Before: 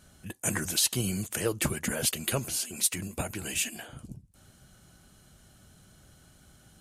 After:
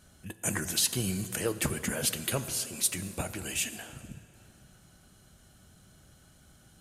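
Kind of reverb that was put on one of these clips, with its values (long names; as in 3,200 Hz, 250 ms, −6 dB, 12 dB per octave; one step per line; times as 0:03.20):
dense smooth reverb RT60 3.2 s, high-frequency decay 0.6×, DRR 11.5 dB
level −1.5 dB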